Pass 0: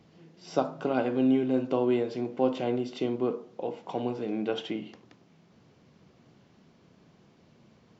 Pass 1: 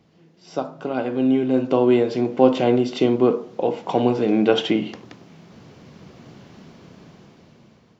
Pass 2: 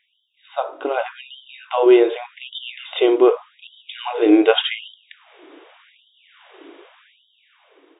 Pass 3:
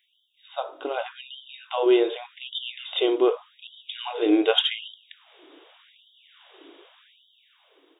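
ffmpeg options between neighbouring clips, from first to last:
-af "dynaudnorm=f=440:g=7:m=6.68"
-af "asubboost=boost=7.5:cutoff=220,afftfilt=real='re*between(b*sr/4096,110,3800)':imag='im*between(b*sr/4096,110,3800)':win_size=4096:overlap=0.75,afftfilt=real='re*gte(b*sr/1024,270*pow(3000/270,0.5+0.5*sin(2*PI*0.85*pts/sr)))':imag='im*gte(b*sr/1024,270*pow(3000/270,0.5+0.5*sin(2*PI*0.85*pts/sr)))':win_size=1024:overlap=0.75,volume=2.11"
-af "aexciter=amount=3.1:drive=3.8:freq=3100,volume=0.447"

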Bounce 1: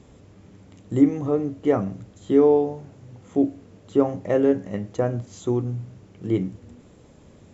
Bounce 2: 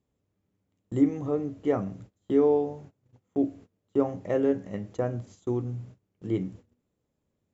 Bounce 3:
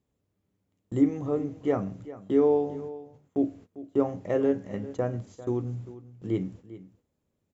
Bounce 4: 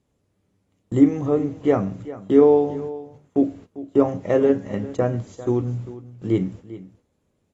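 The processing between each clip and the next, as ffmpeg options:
-af "agate=range=0.0708:threshold=0.01:ratio=16:detection=peak,volume=0.531"
-af "aecho=1:1:397:0.158"
-af "volume=2.37" -ar 32000 -c:a aac -b:a 32k

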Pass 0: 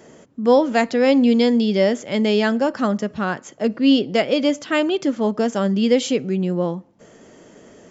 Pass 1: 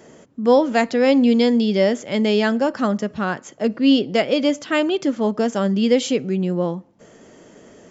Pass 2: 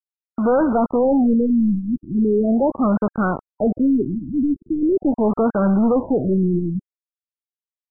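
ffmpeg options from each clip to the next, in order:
-af anull
-af "aresample=8000,acrusher=bits=4:mix=0:aa=0.000001,aresample=44100,asoftclip=type=hard:threshold=0.1,afftfilt=real='re*lt(b*sr/1024,320*pow(1600/320,0.5+0.5*sin(2*PI*0.4*pts/sr)))':imag='im*lt(b*sr/1024,320*pow(1600/320,0.5+0.5*sin(2*PI*0.4*pts/sr)))':win_size=1024:overlap=0.75,volume=2"

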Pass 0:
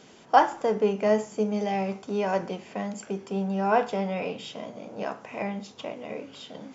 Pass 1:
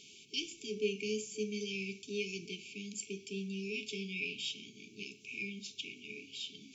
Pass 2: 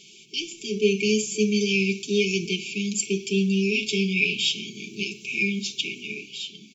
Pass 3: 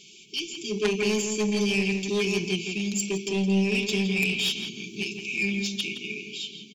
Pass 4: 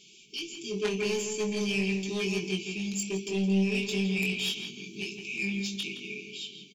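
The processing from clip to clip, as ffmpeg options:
-af "afftfilt=real='re*(1-between(b*sr/4096,440,2200))':imag='im*(1-between(b*sr/4096,440,2200))':win_size=4096:overlap=0.75,lowshelf=f=510:t=q:w=1.5:g=-12.5,volume=1.26"
-af "aecho=1:1:5.5:0.65,dynaudnorm=f=110:g=13:m=2.82,volume=1.78"
-filter_complex "[0:a]aeval=exprs='0.398*(cos(1*acos(clip(val(0)/0.398,-1,1)))-cos(1*PI/2))+0.158*(cos(3*acos(clip(val(0)/0.398,-1,1)))-cos(3*PI/2))+0.0891*(cos(5*acos(clip(val(0)/0.398,-1,1)))-cos(5*PI/2))':c=same,asplit=2[s0][s1];[s1]adelay=166,lowpass=f=2400:p=1,volume=0.531,asplit=2[s2][s3];[s3]adelay=166,lowpass=f=2400:p=1,volume=0.28,asplit=2[s4][s5];[s5]adelay=166,lowpass=f=2400:p=1,volume=0.28,asplit=2[s6][s7];[s7]adelay=166,lowpass=f=2400:p=1,volume=0.28[s8];[s2][s4][s6][s8]amix=inputs=4:normalize=0[s9];[s0][s9]amix=inputs=2:normalize=0"
-filter_complex "[0:a]asplit=2[s0][s1];[s1]adelay=21,volume=0.596[s2];[s0][s2]amix=inputs=2:normalize=0,volume=0.501"

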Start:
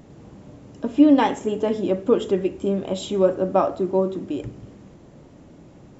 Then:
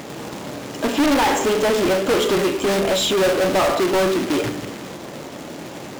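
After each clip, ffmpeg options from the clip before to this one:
-filter_complex "[0:a]acrusher=bits=3:mode=log:mix=0:aa=0.000001,bandreject=f=99.33:t=h:w=4,bandreject=f=198.66:t=h:w=4,bandreject=f=297.99:t=h:w=4,bandreject=f=397.32:t=h:w=4,bandreject=f=496.65:t=h:w=4,bandreject=f=595.98:t=h:w=4,bandreject=f=695.31:t=h:w=4,bandreject=f=794.64:t=h:w=4,bandreject=f=893.97:t=h:w=4,bandreject=f=993.3:t=h:w=4,bandreject=f=1092.63:t=h:w=4,bandreject=f=1191.96:t=h:w=4,bandreject=f=1291.29:t=h:w=4,bandreject=f=1390.62:t=h:w=4,bandreject=f=1489.95:t=h:w=4,bandreject=f=1589.28:t=h:w=4,bandreject=f=1688.61:t=h:w=4,bandreject=f=1787.94:t=h:w=4,bandreject=f=1887.27:t=h:w=4,bandreject=f=1986.6:t=h:w=4,bandreject=f=2085.93:t=h:w=4,bandreject=f=2185.26:t=h:w=4,bandreject=f=2284.59:t=h:w=4,bandreject=f=2383.92:t=h:w=4,bandreject=f=2483.25:t=h:w=4,bandreject=f=2582.58:t=h:w=4,bandreject=f=2681.91:t=h:w=4,bandreject=f=2781.24:t=h:w=4,bandreject=f=2880.57:t=h:w=4,bandreject=f=2979.9:t=h:w=4,bandreject=f=3079.23:t=h:w=4,bandreject=f=3178.56:t=h:w=4,bandreject=f=3277.89:t=h:w=4,asplit=2[s0][s1];[s1]highpass=f=720:p=1,volume=50.1,asoftclip=type=tanh:threshold=0.631[s2];[s0][s2]amix=inputs=2:normalize=0,lowpass=f=6600:p=1,volume=0.501,volume=0.473"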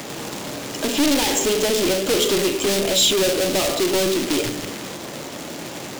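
-filter_complex "[0:a]highshelf=f=2400:g=7.5,acrossover=split=270|560|2400[s0][s1][s2][s3];[s0]aeval=exprs='clip(val(0),-1,0.0141)':c=same[s4];[s2]acompressor=threshold=0.0224:ratio=6[s5];[s4][s1][s5][s3]amix=inputs=4:normalize=0"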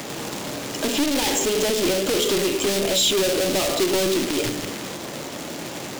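-af "alimiter=limit=0.282:level=0:latency=1:release=62"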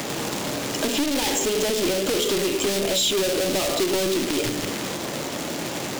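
-af "acompressor=threshold=0.0447:ratio=2,volume=1.5"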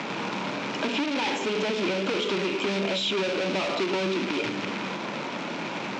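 -af "highpass=150,equalizer=f=200:t=q:w=4:g=8,equalizer=f=960:t=q:w=4:g=8,equalizer=f=1400:t=q:w=4:g=6,equalizer=f=2400:t=q:w=4:g=8,equalizer=f=4700:t=q:w=4:g=-3,lowpass=f=5000:w=0.5412,lowpass=f=5000:w=1.3066,volume=0.562"

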